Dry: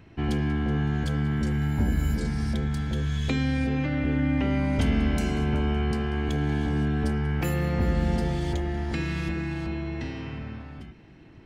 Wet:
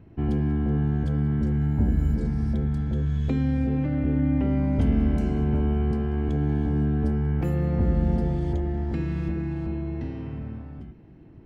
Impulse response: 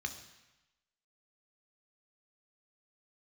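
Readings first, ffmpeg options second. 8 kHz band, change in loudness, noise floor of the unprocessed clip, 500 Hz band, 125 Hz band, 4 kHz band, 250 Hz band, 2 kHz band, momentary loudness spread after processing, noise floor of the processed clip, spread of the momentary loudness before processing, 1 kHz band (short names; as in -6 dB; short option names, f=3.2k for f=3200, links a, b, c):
under -10 dB, +1.5 dB, -49 dBFS, 0.0 dB, +2.5 dB, under -10 dB, +1.5 dB, -9.5 dB, 7 LU, -47 dBFS, 7 LU, -4.0 dB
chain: -af "tiltshelf=f=1.2k:g=9,volume=-6.5dB"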